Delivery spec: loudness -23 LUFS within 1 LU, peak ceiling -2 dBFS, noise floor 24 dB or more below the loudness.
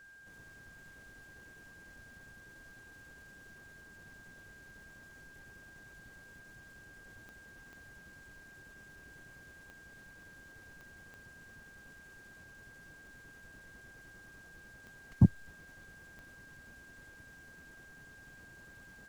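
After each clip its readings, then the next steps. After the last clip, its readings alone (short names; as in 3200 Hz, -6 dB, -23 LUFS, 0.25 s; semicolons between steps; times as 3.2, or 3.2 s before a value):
clicks 7; steady tone 1600 Hz; tone level -54 dBFS; loudness -44.5 LUFS; peak -11.5 dBFS; loudness target -23.0 LUFS
-> de-click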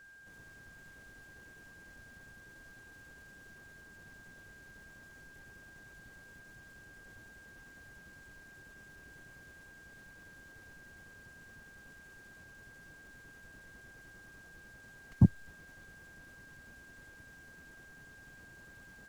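clicks 0; steady tone 1600 Hz; tone level -54 dBFS
-> notch 1600 Hz, Q 30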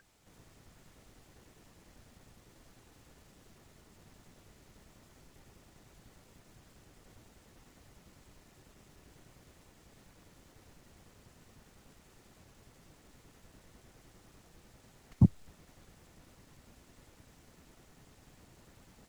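steady tone none; loudness -28.5 LUFS; peak -11.5 dBFS; loudness target -23.0 LUFS
-> gain +5.5 dB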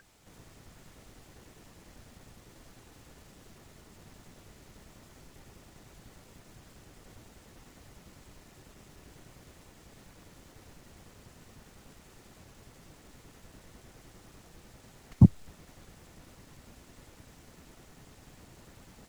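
loudness -23.0 LUFS; peak -6.0 dBFS; noise floor -58 dBFS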